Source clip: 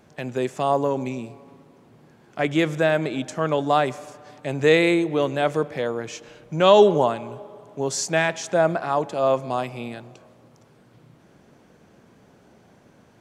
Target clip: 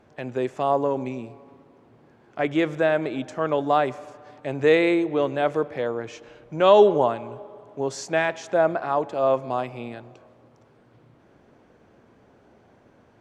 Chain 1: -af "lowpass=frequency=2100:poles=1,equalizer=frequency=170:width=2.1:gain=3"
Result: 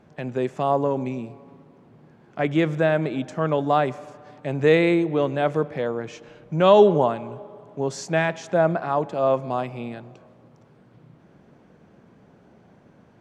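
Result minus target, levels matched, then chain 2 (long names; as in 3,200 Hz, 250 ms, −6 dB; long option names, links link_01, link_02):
125 Hz band +7.0 dB
-af "lowpass=frequency=2100:poles=1,equalizer=frequency=170:width=2.1:gain=-7.5"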